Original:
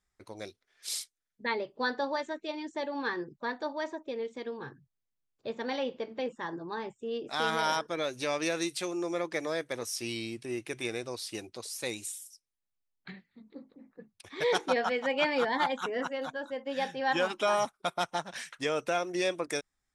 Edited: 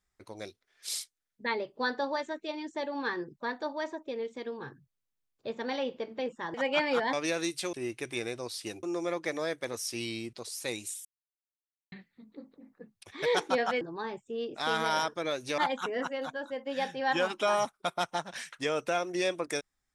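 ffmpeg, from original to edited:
ffmpeg -i in.wav -filter_complex "[0:a]asplit=10[link_01][link_02][link_03][link_04][link_05][link_06][link_07][link_08][link_09][link_10];[link_01]atrim=end=6.542[link_11];[link_02]atrim=start=14.988:end=15.582[link_12];[link_03]atrim=start=8.308:end=8.912[link_13];[link_04]atrim=start=10.408:end=11.512[link_14];[link_05]atrim=start=8.908:end=10.412[link_15];[link_06]atrim=start=11.508:end=12.23,asetpts=PTS-STARTPTS,afade=type=out:start_time=0.718:duration=0.004:curve=hsin[link_16];[link_07]atrim=start=12.23:end=13.1,asetpts=PTS-STARTPTS,volume=0[link_17];[link_08]atrim=start=13.1:end=14.992,asetpts=PTS-STARTPTS,afade=type=in:duration=0.004:curve=hsin[link_18];[link_09]atrim=start=6.538:end=8.312[link_19];[link_10]atrim=start=15.578[link_20];[link_11][link_12]acrossfade=duration=0.004:curve1=hsin:curve2=hsin[link_21];[link_21][link_13]acrossfade=duration=0.004:curve1=hsin:curve2=hsin[link_22];[link_22][link_14]acrossfade=duration=0.004:curve1=hsin:curve2=hsin[link_23];[link_23][link_15]acrossfade=duration=0.004:curve1=hsin:curve2=hsin[link_24];[link_16][link_17][link_18]concat=n=3:v=0:a=1[link_25];[link_24][link_25]acrossfade=duration=0.004:curve1=hsin:curve2=hsin[link_26];[link_26][link_19]acrossfade=duration=0.004:curve1=hsin:curve2=hsin[link_27];[link_27][link_20]acrossfade=duration=0.004:curve1=hsin:curve2=hsin" out.wav

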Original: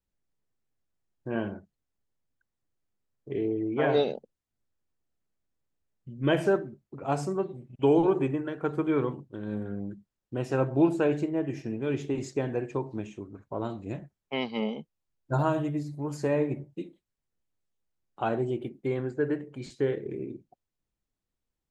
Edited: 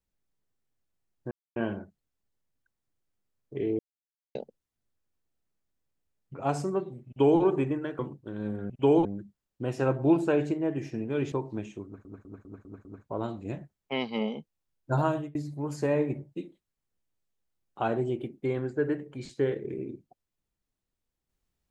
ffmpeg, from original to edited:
ffmpeg -i in.wav -filter_complex "[0:a]asplit=15[link_01][link_02][link_03][link_04][link_05][link_06][link_07][link_08][link_09][link_10][link_11][link_12][link_13][link_14][link_15];[link_01]atrim=end=1.31,asetpts=PTS-STARTPTS,afade=type=out:start_time=1.306:duration=0.004:curve=hsin,apad=pad_dur=0.25[link_16];[link_02]atrim=start=1.31:end=3.54,asetpts=PTS-STARTPTS,afade=type=in:duration=0.004:curve=hsin,afade=type=out:start_time=2.226:duration=0.004:curve=hsin[link_17];[link_03]atrim=start=3.54:end=4.1,asetpts=PTS-STARTPTS,volume=0[link_18];[link_04]atrim=start=4.1:end=6.092,asetpts=PTS-STARTPTS,afade=type=in:duration=0.004:curve=hsin[link_19];[link_05]atrim=start=6.968:end=8.622[link_20];[link_06]atrim=start=9.058:end=9.772[link_21];[link_07]atrim=start=7.698:end=8.052[link_22];[link_08]atrim=start=9.768:end=12.042[link_23];[link_09]atrim=start=12.728:end=13.462[link_24];[link_10]atrim=start=13.258:end=13.462[link_25];[link_11]atrim=start=13.258:end=13.462[link_26];[link_12]atrim=start=13.258:end=13.462[link_27];[link_13]atrim=start=13.258:end=13.462[link_28];[link_14]atrim=start=13.258:end=15.76,asetpts=PTS-STARTPTS,afade=type=out:start_time=2.152:duration=0.35:curve=qsin[link_29];[link_15]atrim=start=15.76,asetpts=PTS-STARTPTS,afade=type=in:duration=0.004:curve=hsin[link_30];[link_16][link_17][link_18][link_19]concat=n=4:v=0:a=1[link_31];[link_31][link_20]acrossfade=duration=0.004:curve1=hsin:curve2=hsin[link_32];[link_32][link_21]acrossfade=duration=0.004:curve1=hsin:curve2=hsin[link_33];[link_33][link_22]acrossfade=duration=0.004:curve1=hsin:curve2=hsin[link_34];[link_34][link_23]acrossfade=duration=0.004:curve1=hsin:curve2=hsin[link_35];[link_35][link_24]acrossfade=duration=0.004:curve1=hsin:curve2=hsin[link_36];[link_36][link_25]acrossfade=duration=0.004:curve1=hsin:curve2=hsin[link_37];[link_37][link_26]acrossfade=duration=0.004:curve1=hsin:curve2=hsin[link_38];[link_38][link_27]acrossfade=duration=0.004:curve1=hsin:curve2=hsin[link_39];[link_39][link_28]acrossfade=duration=0.004:curve1=hsin:curve2=hsin[link_40];[link_29][link_30]concat=n=2:v=0:a=1[link_41];[link_40][link_41]acrossfade=duration=0.004:curve1=hsin:curve2=hsin" out.wav

